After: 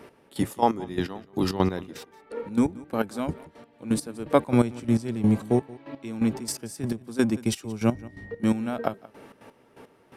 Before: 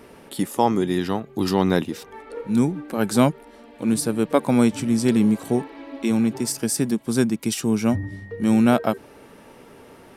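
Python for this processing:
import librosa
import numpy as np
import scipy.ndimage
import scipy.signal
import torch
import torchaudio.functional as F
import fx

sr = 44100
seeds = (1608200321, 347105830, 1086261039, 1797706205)

y = fx.octave_divider(x, sr, octaves=1, level_db=-4.0)
y = fx.low_shelf(y, sr, hz=110.0, db=-11.5)
y = fx.step_gate(y, sr, bpm=169, pattern='x...xx.x...', floor_db=-12.0, edge_ms=4.5)
y = fx.high_shelf(y, sr, hz=4500.0, db=-6.0)
y = y + 10.0 ** (-21.0 / 20.0) * np.pad(y, (int(177 * sr / 1000.0), 0))[:len(y)]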